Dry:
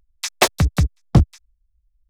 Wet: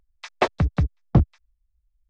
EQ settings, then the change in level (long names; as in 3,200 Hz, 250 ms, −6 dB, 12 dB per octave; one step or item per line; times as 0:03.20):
head-to-tape spacing loss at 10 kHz 35 dB
low-shelf EQ 220 Hz −4.5 dB
0.0 dB